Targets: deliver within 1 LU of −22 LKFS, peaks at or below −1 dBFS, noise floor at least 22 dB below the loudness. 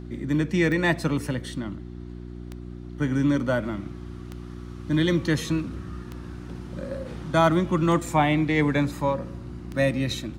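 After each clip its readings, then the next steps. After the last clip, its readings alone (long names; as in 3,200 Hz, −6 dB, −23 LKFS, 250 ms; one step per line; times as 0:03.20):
number of clicks 6; mains hum 60 Hz; hum harmonics up to 360 Hz; level of the hum −35 dBFS; integrated loudness −25.0 LKFS; sample peak −8.5 dBFS; target loudness −22.0 LKFS
→ click removal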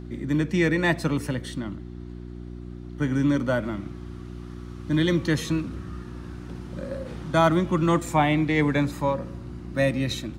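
number of clicks 0; mains hum 60 Hz; hum harmonics up to 360 Hz; level of the hum −35 dBFS
→ hum removal 60 Hz, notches 6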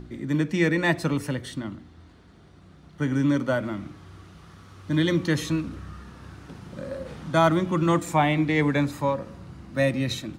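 mains hum none found; integrated loudness −25.0 LKFS; sample peak −8.0 dBFS; target loudness −22.0 LKFS
→ level +3 dB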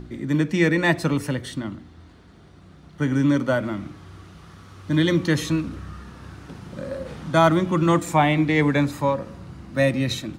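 integrated loudness −22.0 LKFS; sample peak −5.0 dBFS; background noise floor −48 dBFS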